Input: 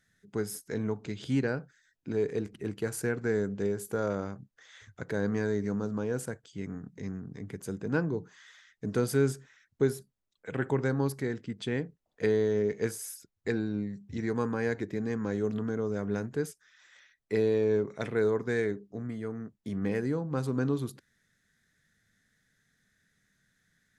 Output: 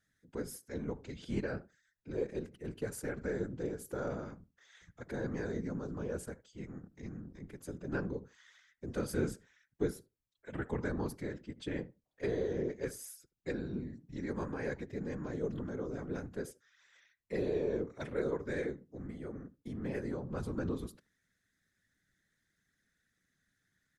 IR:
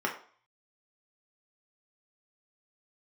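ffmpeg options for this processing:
-filter_complex "[0:a]asplit=2[link_01][link_02];[link_02]adelay=76,lowpass=frequency=1600:poles=1,volume=-19.5dB,asplit=2[link_03][link_04];[link_04]adelay=76,lowpass=frequency=1600:poles=1,volume=0.16[link_05];[link_01][link_03][link_05]amix=inputs=3:normalize=0,afftfilt=real='hypot(re,im)*cos(2*PI*random(0))':imag='hypot(re,im)*sin(2*PI*random(1))':win_size=512:overlap=0.75,volume=-1.5dB"

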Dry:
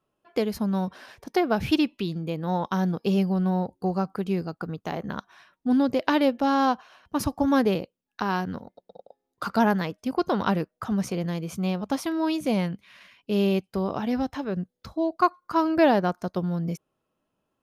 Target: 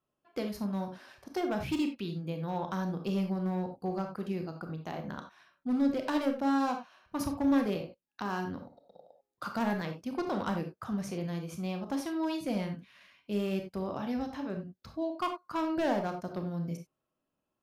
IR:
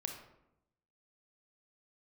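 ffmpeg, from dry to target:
-filter_complex "[0:a]bandreject=frequency=440:width=12,asoftclip=type=hard:threshold=-18dB[link_01];[1:a]atrim=start_sample=2205,atrim=end_sample=4410[link_02];[link_01][link_02]afir=irnorm=-1:irlink=0,volume=-6dB"

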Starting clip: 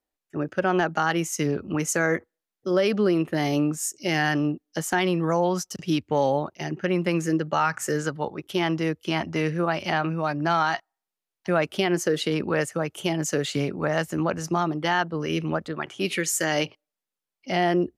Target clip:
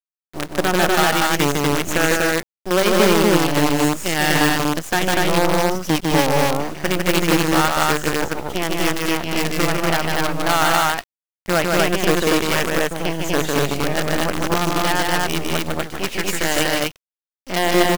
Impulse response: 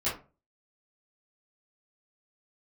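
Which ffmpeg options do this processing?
-filter_complex "[0:a]highshelf=frequency=7800:gain=-3.5,acrusher=bits=4:dc=4:mix=0:aa=0.000001,asplit=2[link_01][link_02];[link_02]aecho=0:1:151.6|242:0.708|0.891[link_03];[link_01][link_03]amix=inputs=2:normalize=0,volume=3.5dB"

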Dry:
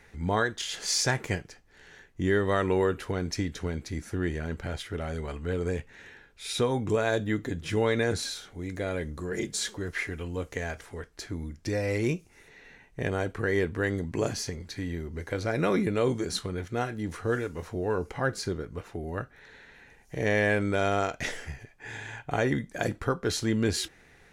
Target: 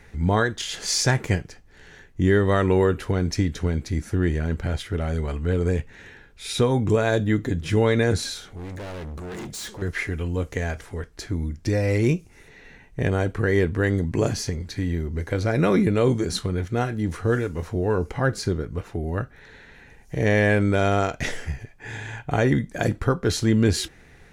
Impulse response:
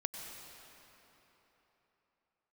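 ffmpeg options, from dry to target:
-filter_complex "[0:a]lowshelf=frequency=240:gain=7.5,asettb=1/sr,asplit=3[link_01][link_02][link_03];[link_01]atrim=end=8.444[link_04];[link_02]atrim=start=8.44:end=9.82,asetpts=PTS-STARTPTS,afade=type=in:duration=0.004:curve=qsin,afade=type=out:start_time=1.376:duration=0.004:curve=qsin,asoftclip=type=hard:threshold=-36dB[link_05];[link_03]atrim=start=9.816[link_06];[link_04][link_05]acrossfade=duration=0.004:curve1=hsin:curve2=qsin[link_07];[link_07][link_06]acrossfade=duration=0.004:curve1=qsin:curve2=hsin,volume=3.5dB"

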